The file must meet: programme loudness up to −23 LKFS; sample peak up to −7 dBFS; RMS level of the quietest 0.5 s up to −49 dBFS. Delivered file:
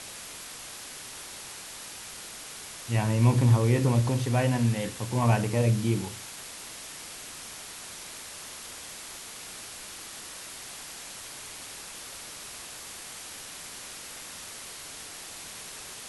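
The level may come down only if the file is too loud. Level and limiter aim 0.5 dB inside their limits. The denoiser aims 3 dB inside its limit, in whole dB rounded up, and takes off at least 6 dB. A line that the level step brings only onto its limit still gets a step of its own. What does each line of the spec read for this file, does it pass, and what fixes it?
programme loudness −31.0 LKFS: in spec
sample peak −10.5 dBFS: in spec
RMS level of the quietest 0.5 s −42 dBFS: out of spec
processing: broadband denoise 10 dB, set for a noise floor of −42 dBFS

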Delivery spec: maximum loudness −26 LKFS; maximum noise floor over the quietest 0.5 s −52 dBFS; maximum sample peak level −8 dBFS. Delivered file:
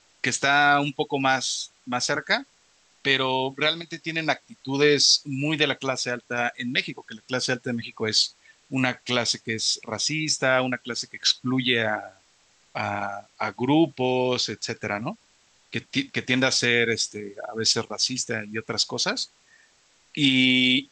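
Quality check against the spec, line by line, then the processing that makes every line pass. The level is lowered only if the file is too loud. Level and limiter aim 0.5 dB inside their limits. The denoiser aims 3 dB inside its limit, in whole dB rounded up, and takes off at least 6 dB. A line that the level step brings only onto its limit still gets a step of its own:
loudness −23.5 LKFS: out of spec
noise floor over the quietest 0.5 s −61 dBFS: in spec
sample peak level −5.5 dBFS: out of spec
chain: level −3 dB

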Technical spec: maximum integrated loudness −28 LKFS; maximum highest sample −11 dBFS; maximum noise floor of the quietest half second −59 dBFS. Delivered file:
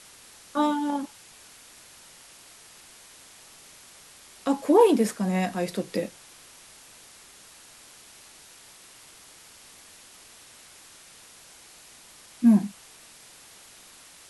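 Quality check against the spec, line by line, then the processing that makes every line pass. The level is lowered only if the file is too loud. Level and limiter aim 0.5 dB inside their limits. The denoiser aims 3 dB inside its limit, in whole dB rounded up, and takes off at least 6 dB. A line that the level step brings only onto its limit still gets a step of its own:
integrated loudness −24.5 LKFS: out of spec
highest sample −6.0 dBFS: out of spec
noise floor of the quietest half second −51 dBFS: out of spec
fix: broadband denoise 7 dB, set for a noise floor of −51 dBFS
level −4 dB
brickwall limiter −11.5 dBFS

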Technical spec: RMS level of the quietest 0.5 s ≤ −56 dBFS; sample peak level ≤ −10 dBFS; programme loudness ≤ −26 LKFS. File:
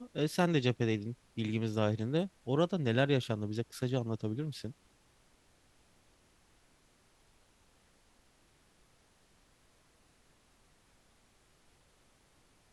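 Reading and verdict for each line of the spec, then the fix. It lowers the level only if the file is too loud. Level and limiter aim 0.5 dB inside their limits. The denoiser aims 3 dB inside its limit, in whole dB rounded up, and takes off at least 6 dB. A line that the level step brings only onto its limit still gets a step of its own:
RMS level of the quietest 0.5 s −67 dBFS: in spec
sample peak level −15.5 dBFS: in spec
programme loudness −33.5 LKFS: in spec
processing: no processing needed

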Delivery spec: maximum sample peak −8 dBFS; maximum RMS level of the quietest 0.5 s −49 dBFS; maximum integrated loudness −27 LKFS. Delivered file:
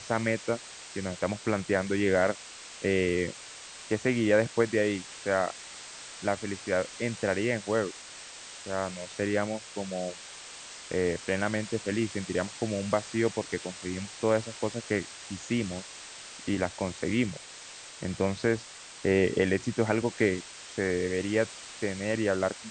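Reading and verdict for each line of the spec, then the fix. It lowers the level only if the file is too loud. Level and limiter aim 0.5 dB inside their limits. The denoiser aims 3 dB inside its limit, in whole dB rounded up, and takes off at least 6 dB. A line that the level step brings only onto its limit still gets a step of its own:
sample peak −8.5 dBFS: in spec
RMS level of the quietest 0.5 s −46 dBFS: out of spec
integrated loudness −30.0 LKFS: in spec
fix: broadband denoise 6 dB, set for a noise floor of −46 dBFS

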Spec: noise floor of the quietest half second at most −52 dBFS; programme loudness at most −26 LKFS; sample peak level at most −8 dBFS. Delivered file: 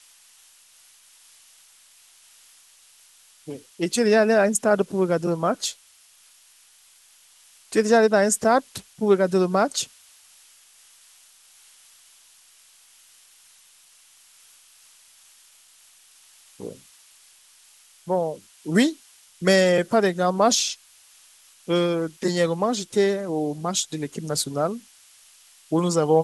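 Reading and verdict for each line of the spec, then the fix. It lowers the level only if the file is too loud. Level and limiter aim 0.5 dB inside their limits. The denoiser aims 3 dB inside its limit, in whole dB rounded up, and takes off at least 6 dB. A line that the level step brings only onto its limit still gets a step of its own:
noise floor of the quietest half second −55 dBFS: in spec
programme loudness −22.0 LKFS: out of spec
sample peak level −5.5 dBFS: out of spec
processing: level −4.5 dB

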